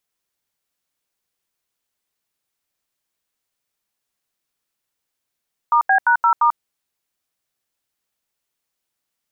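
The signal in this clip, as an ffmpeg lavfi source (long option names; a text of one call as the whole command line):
ffmpeg -f lavfi -i "aevalsrc='0.2*clip(min(mod(t,0.173),0.091-mod(t,0.173))/0.002,0,1)*(eq(floor(t/0.173),0)*(sin(2*PI*941*mod(t,0.173))+sin(2*PI*1209*mod(t,0.173)))+eq(floor(t/0.173),1)*(sin(2*PI*770*mod(t,0.173))+sin(2*PI*1633*mod(t,0.173)))+eq(floor(t/0.173),2)*(sin(2*PI*941*mod(t,0.173))+sin(2*PI*1477*mod(t,0.173)))+eq(floor(t/0.173),3)*(sin(2*PI*941*mod(t,0.173))+sin(2*PI*1336*mod(t,0.173)))+eq(floor(t/0.173),4)*(sin(2*PI*941*mod(t,0.173))+sin(2*PI*1209*mod(t,0.173))))':duration=0.865:sample_rate=44100" out.wav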